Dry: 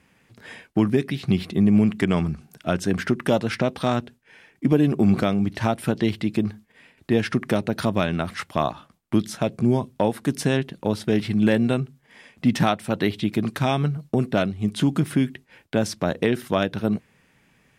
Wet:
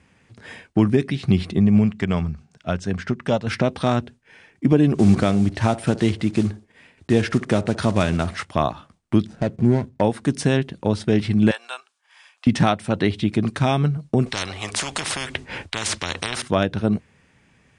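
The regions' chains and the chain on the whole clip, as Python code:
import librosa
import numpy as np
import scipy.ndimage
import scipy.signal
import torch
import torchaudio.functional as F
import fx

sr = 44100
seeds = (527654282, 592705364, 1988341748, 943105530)

y = fx.chain(x, sr, fx.lowpass(hz=8100.0, slope=24),
    fx.peak_eq(hz=320.0, db=-7.5, octaves=0.41),
    fx.upward_expand(threshold_db=-27.0, expansion=1.5), at=(1.59, 3.47))
y = fx.chain(y, sr, fx.block_float(bits=5),
    fx.echo_banded(ms=61, feedback_pct=42, hz=530.0, wet_db=-15.5), at=(4.94, 8.45))
y = fx.chain(y, sr, fx.median_filter(points=41),
    fx.notch(hz=1200.0, q=10.0), at=(9.26, 10.01))
y = fx.chain(y, sr, fx.highpass(hz=900.0, slope=24),
    fx.peak_eq(hz=2000.0, db=-10.5, octaves=0.22), at=(11.51, 12.47))
y = fx.chain(y, sr, fx.high_shelf(hz=4600.0, db=-6.0),
    fx.spectral_comp(ratio=10.0), at=(14.26, 16.42))
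y = scipy.signal.sosfilt(scipy.signal.cheby1(5, 1.0, 9500.0, 'lowpass', fs=sr, output='sos'), y)
y = fx.peak_eq(y, sr, hz=83.0, db=7.5, octaves=0.73)
y = y * librosa.db_to_amplitude(2.0)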